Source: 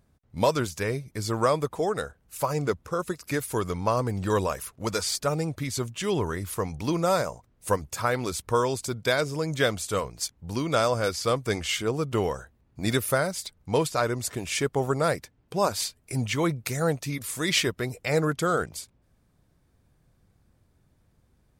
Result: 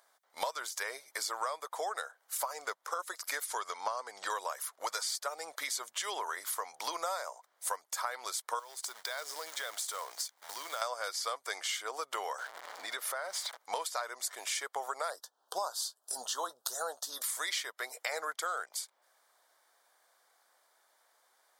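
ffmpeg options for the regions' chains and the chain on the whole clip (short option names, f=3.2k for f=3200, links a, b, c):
-filter_complex "[0:a]asettb=1/sr,asplit=3[a][b][c];[a]atrim=end=3.454[d];[b]atrim=start=3.45:end=4.3,asetpts=PTS-STARTPTS,afade=t=in:d=0.004:c=qsin,afade=t=out:st=0.846:d=0.004:c=qsin,lowpass=7.2k,highshelf=f=4.5k:g=5[e];[c]atrim=start=4.296[f];[d][e]acrossfade=d=0.004:c1=hsin:c2=qsin[g];[g][f]acrossfade=d=0.004:c1=qsin:c2=hsin,asettb=1/sr,asplit=3[h][i][j];[h]atrim=end=8.594[k];[i]atrim=start=8.59:end=10.82,asetpts=PTS-STARTPTS,afade=t=in:d=0.004:c=qsin,afade=t=out:st=2.226:d=0.004:c=qsin,acompressor=threshold=-36dB:ratio=8:attack=3.2:release=140:knee=1:detection=peak,acrusher=bits=3:mode=log:mix=0:aa=0.000001[l];[j]atrim=start=10.816[m];[k][l]acrossfade=d=0.004:c1=hsin:c2=qsin[n];[n][m]acrossfade=d=0.004:c1=qsin:c2=hsin,asettb=1/sr,asplit=3[o][p][q];[o]atrim=end=12.384[r];[p]atrim=start=12.38:end=13.57,asetpts=PTS-STARTPTS,afade=t=in:d=0.004:c=qsin,afade=t=out:st=1.186:d=0.004:c=qsin,aeval=exprs='val(0)+0.5*0.015*sgn(val(0))':c=same,lowpass=f=2.8k:p=1,acompressor=threshold=-34dB:ratio=3:attack=3.2:release=140:knee=1:detection=peak[s];[q]atrim=start=13.566[t];[r][s]acrossfade=d=0.004:c1=hsin:c2=qsin[u];[u][t]acrossfade=d=0.004:c1=qsin:c2=hsin,asettb=1/sr,asplit=3[v][w][x];[v]atrim=end=15.104[y];[w]atrim=start=15.1:end=17.22,asetpts=PTS-STARTPTS,afade=t=in:d=0.004:c=qsin,afade=t=out:st=2.116:d=0.004:c=qsin,asuperstop=centerf=2200:order=4:qfactor=1.2,asplit=2[z][aa];[aa]adelay=16,volume=-13.5dB[ab];[z][ab]amix=inputs=2:normalize=0,atrim=end_sample=93492[ac];[x]atrim=start=17.216[ad];[y][ac]acrossfade=d=0.004:c1=hsin:c2=qsin[ae];[ae][ad]acrossfade=d=0.004:c1=qsin:c2=hsin,highpass=f=690:w=0.5412,highpass=f=690:w=1.3066,equalizer=f=2.6k:w=7.1:g=-13.5,acompressor=threshold=-42dB:ratio=6,volume=8dB"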